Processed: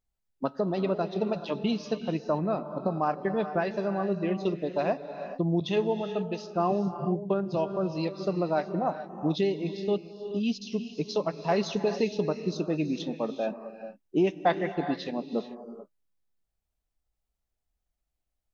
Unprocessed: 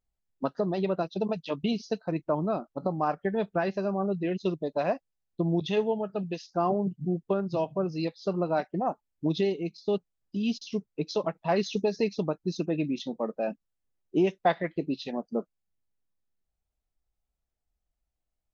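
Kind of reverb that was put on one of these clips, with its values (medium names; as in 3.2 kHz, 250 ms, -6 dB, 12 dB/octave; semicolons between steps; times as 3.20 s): gated-style reverb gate 460 ms rising, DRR 9 dB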